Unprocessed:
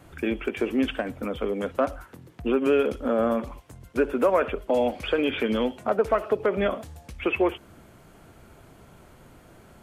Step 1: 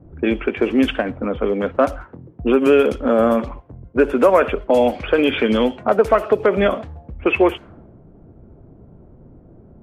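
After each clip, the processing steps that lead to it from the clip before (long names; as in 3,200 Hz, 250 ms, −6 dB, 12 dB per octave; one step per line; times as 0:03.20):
low-pass that shuts in the quiet parts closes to 360 Hz, open at −19.5 dBFS
level +8 dB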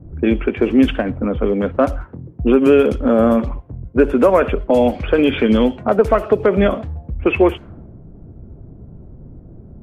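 low-shelf EQ 260 Hz +11 dB
level −1.5 dB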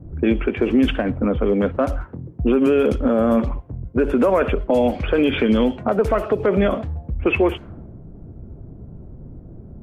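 brickwall limiter −8.5 dBFS, peak gain reduction 7 dB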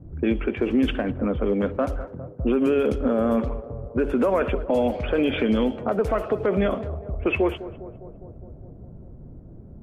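feedback echo with a band-pass in the loop 203 ms, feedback 74%, band-pass 580 Hz, level −14 dB
level −4.5 dB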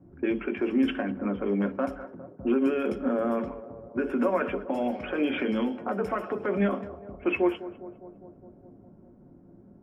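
convolution reverb RT60 0.15 s, pre-delay 3 ms, DRR 7.5 dB
level −8 dB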